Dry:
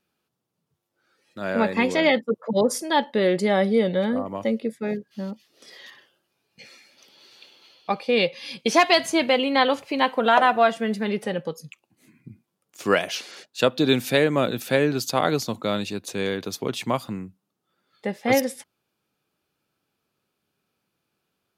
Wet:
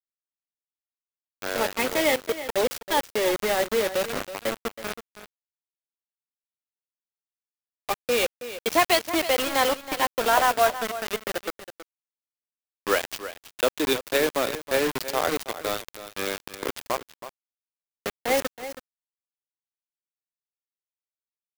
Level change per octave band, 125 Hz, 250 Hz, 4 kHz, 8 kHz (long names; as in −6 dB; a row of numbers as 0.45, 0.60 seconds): −13.0, −8.5, −2.0, +3.0 decibels